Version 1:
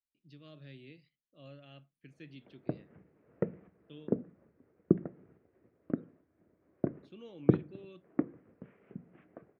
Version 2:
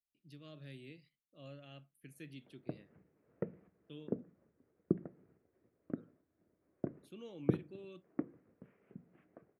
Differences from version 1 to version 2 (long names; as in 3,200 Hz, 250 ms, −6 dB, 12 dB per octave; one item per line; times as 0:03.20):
background −7.0 dB
master: remove low-pass filter 5,500 Hz 24 dB per octave